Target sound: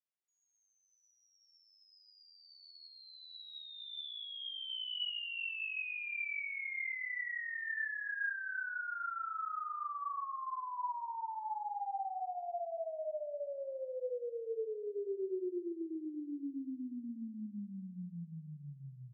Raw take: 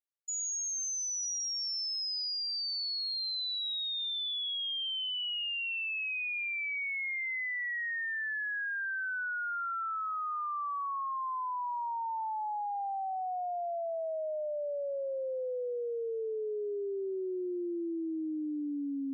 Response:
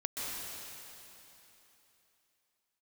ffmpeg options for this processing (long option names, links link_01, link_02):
-filter_complex "[0:a]highpass=frequency=350:width_type=q:width=0.5412,highpass=frequency=350:width_type=q:width=1.307,lowpass=frequency=3300:width_type=q:width=0.5176,lowpass=frequency=3300:width_type=q:width=0.7071,lowpass=frequency=3300:width_type=q:width=1.932,afreqshift=-150,aecho=1:1:237|474|711|948:0.158|0.0697|0.0307|0.0135[link_01];[1:a]atrim=start_sample=2205,afade=type=out:start_time=0.23:duration=0.01,atrim=end_sample=10584,asetrate=66150,aresample=44100[link_02];[link_01][link_02]afir=irnorm=-1:irlink=0,volume=-1.5dB"